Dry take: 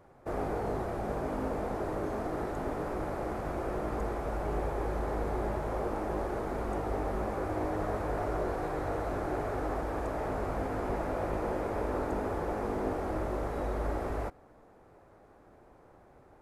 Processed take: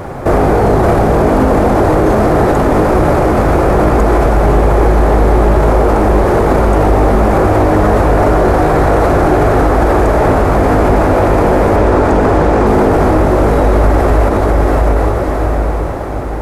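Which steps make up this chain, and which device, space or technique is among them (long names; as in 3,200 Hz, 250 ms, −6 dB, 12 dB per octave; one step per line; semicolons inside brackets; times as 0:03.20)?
0:11.76–0:12.67: low-pass filter 8,200 Hz 12 dB per octave
parametric band 89 Hz +3.5 dB 2.6 octaves
feedback delay with all-pass diffusion 676 ms, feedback 42%, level −9 dB
loud club master (downward compressor 1.5 to 1, threshold −37 dBFS, peak gain reduction 4.5 dB; hard clipping −27 dBFS, distortion −25 dB; boost into a limiter +35 dB)
level −1.5 dB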